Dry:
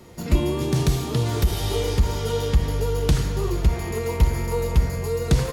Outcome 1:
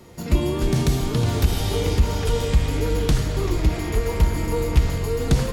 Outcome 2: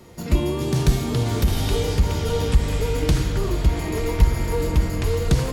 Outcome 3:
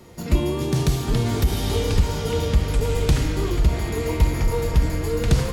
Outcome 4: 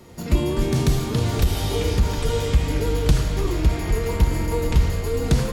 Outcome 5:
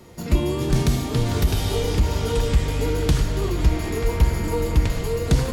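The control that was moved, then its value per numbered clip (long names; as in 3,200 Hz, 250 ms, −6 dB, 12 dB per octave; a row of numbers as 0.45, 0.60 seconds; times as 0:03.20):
delay with pitch and tempo change per echo, delay time: 142, 390, 608, 94, 225 milliseconds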